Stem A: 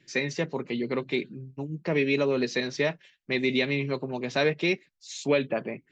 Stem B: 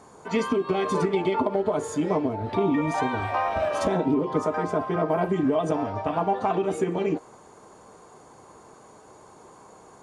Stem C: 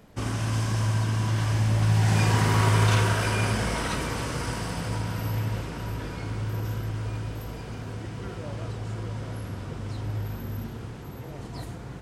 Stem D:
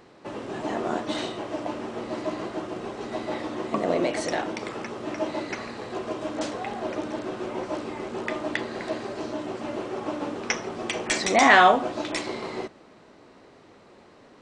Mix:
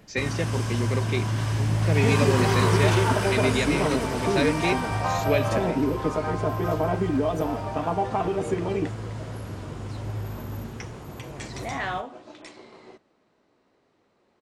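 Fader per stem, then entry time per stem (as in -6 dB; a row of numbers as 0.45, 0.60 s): -0.5, -1.5, -1.0, -15.0 dB; 0.00, 1.70, 0.00, 0.30 s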